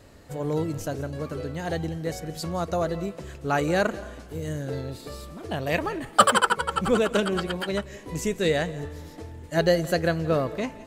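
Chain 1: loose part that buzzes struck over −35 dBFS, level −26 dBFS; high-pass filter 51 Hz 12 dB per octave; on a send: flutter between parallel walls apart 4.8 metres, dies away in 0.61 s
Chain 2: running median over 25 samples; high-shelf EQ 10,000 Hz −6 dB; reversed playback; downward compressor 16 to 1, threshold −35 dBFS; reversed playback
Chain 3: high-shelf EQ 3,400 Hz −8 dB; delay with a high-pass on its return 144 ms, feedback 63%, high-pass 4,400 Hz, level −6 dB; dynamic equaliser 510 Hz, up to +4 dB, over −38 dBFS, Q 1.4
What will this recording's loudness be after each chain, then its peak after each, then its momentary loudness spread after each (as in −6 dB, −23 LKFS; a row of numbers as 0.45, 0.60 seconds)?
−23.0, −40.5, −25.0 LKFS; −2.0, −24.5, −2.0 dBFS; 14, 4, 16 LU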